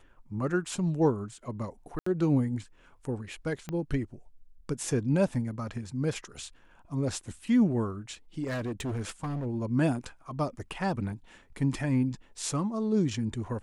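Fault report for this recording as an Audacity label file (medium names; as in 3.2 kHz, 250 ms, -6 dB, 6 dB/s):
1.990000	2.060000	dropout 74 ms
3.690000	3.690000	pop -22 dBFS
8.430000	9.470000	clipped -29.5 dBFS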